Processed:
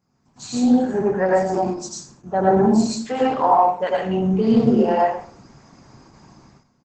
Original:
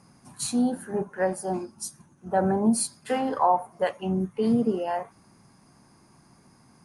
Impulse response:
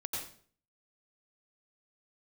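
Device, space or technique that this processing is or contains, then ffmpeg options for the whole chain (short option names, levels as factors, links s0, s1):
speakerphone in a meeting room: -filter_complex "[0:a]asettb=1/sr,asplit=3[s0][s1][s2];[s0]atrim=end=2.604[s3];[s1]atrim=start=2.6:end=3.86,asetpts=PTS-STARTPTS,afade=t=in:d=0.004:c=qsin,afade=t=out:st=1.256:d=0.004:c=qsin,equalizer=f=4700:w=7.2:g=-4.5[s4];[s2]atrim=start=3.856[s5];[s3][s4]acrossfade=d=0.004:c1=hsin:c2=qsin[s6];[s6][s5]acrossfade=d=0.004:c1=qsin:c2=hsin[s7];[1:a]atrim=start_sample=2205[s8];[s7][s8]afir=irnorm=-1:irlink=0,asplit=2[s9][s10];[s10]adelay=100,highpass=300,lowpass=3400,asoftclip=type=hard:threshold=0.133,volume=0.0708[s11];[s9][s11]amix=inputs=2:normalize=0,dynaudnorm=f=170:g=7:m=3.55,agate=range=0.355:threshold=0.00447:ratio=16:detection=peak,volume=0.794" -ar 48000 -c:a libopus -b:a 12k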